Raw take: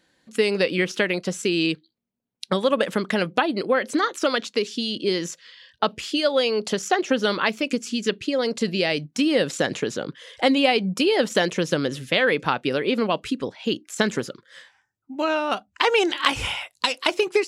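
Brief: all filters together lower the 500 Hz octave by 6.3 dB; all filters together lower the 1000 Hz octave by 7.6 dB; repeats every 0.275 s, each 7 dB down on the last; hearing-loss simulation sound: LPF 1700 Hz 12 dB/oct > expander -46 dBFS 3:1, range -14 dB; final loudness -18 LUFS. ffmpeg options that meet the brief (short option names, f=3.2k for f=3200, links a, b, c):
-af "lowpass=1.7k,equalizer=f=500:t=o:g=-6,equalizer=f=1k:t=o:g=-7.5,aecho=1:1:275|550|825|1100|1375:0.447|0.201|0.0905|0.0407|0.0183,agate=range=-14dB:threshold=-46dB:ratio=3,volume=10dB"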